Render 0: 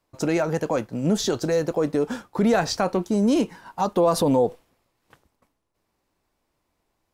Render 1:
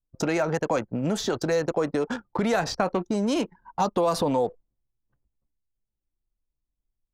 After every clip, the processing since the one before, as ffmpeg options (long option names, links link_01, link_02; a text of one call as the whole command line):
ffmpeg -i in.wav -filter_complex "[0:a]anlmdn=6.31,acrossover=split=700|1700|4900[link_01][link_02][link_03][link_04];[link_01]acompressor=threshold=-29dB:ratio=4[link_05];[link_02]acompressor=threshold=-30dB:ratio=4[link_06];[link_03]acompressor=threshold=-39dB:ratio=4[link_07];[link_04]acompressor=threshold=-44dB:ratio=4[link_08];[link_05][link_06][link_07][link_08]amix=inputs=4:normalize=0,volume=3.5dB" out.wav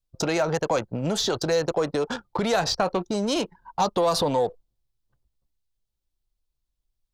ffmpeg -i in.wav -filter_complex "[0:a]equalizer=frequency=250:width_type=o:width=1:gain=-6,equalizer=frequency=2000:width_type=o:width=1:gain=-4,equalizer=frequency=4000:width_type=o:width=1:gain=6,asplit=2[link_01][link_02];[link_02]asoftclip=type=tanh:threshold=-22.5dB,volume=-6.5dB[link_03];[link_01][link_03]amix=inputs=2:normalize=0" out.wav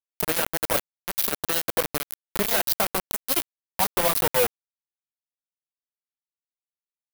ffmpeg -i in.wav -filter_complex "[0:a]flanger=delay=1.7:depth=7.8:regen=34:speed=0.92:shape=sinusoidal,acrusher=bits=3:mix=0:aa=0.000001,acrossover=split=2300[link_01][link_02];[link_02]aexciter=amount=3:drive=6.5:freq=9500[link_03];[link_01][link_03]amix=inputs=2:normalize=0" out.wav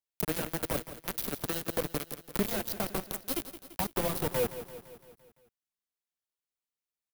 ffmpeg -i in.wav -filter_complex "[0:a]acrossover=split=380[link_01][link_02];[link_02]acompressor=threshold=-32dB:ratio=5[link_03];[link_01][link_03]amix=inputs=2:normalize=0,asplit=2[link_04][link_05];[link_05]aecho=0:1:170|340|510|680|850|1020:0.224|0.128|0.0727|0.0415|0.0236|0.0135[link_06];[link_04][link_06]amix=inputs=2:normalize=0" out.wav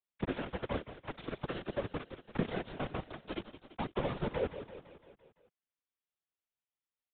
ffmpeg -i in.wav -filter_complex "[0:a]acrossover=split=320[link_01][link_02];[link_02]asoftclip=type=tanh:threshold=-24dB[link_03];[link_01][link_03]amix=inputs=2:normalize=0,afftfilt=real='hypot(re,im)*cos(2*PI*random(0))':imag='hypot(re,im)*sin(2*PI*random(1))':win_size=512:overlap=0.75,aresample=8000,aresample=44100,volume=3.5dB" out.wav